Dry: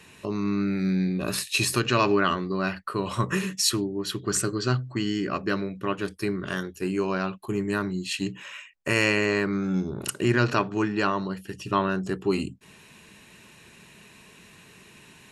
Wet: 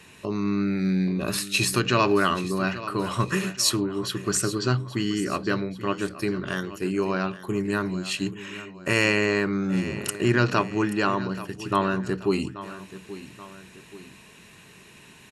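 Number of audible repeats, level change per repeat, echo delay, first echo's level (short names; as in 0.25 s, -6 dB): 2, -6.5 dB, 0.831 s, -15.0 dB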